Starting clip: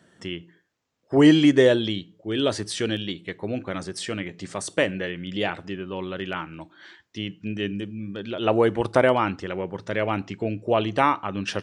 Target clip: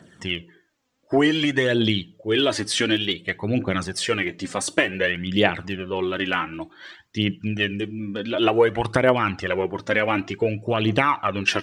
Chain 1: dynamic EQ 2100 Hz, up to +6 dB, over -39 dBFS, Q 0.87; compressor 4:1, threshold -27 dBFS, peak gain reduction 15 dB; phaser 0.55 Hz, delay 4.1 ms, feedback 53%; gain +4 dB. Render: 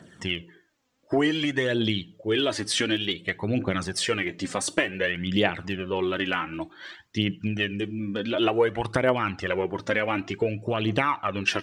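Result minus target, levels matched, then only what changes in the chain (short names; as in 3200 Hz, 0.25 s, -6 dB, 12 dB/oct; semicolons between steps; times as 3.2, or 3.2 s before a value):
compressor: peak gain reduction +4.5 dB
change: compressor 4:1, threshold -21 dBFS, peak gain reduction 10.5 dB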